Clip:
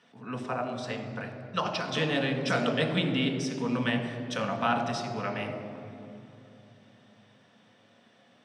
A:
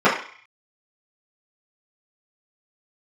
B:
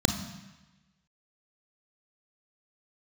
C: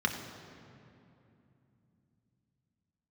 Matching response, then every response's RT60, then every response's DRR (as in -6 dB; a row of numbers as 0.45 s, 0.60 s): C; 0.50 s, 1.1 s, 2.8 s; -12.0 dB, 5.0 dB, 2.5 dB